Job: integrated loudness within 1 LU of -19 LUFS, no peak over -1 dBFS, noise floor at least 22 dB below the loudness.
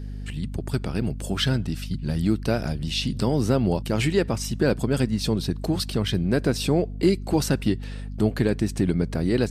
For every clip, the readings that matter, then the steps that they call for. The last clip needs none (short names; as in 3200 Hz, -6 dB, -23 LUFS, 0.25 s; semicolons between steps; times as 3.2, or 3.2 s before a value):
hum 50 Hz; harmonics up to 250 Hz; hum level -31 dBFS; loudness -24.5 LUFS; peak -8.0 dBFS; loudness target -19.0 LUFS
-> de-hum 50 Hz, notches 5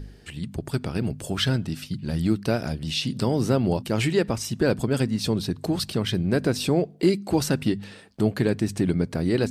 hum none; loudness -25.0 LUFS; peak -8.5 dBFS; loudness target -19.0 LUFS
-> gain +6 dB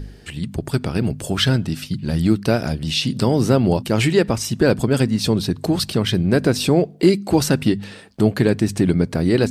loudness -19.0 LUFS; peak -2.5 dBFS; noise floor -41 dBFS